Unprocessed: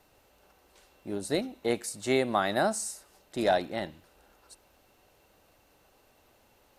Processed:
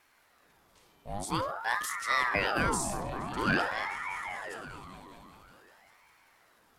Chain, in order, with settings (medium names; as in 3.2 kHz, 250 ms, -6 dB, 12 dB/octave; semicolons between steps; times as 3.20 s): delay with an opening low-pass 195 ms, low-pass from 200 Hz, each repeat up 1 oct, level -3 dB; transient shaper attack -1 dB, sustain +7 dB; ring modulator with a swept carrier 980 Hz, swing 65%, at 0.49 Hz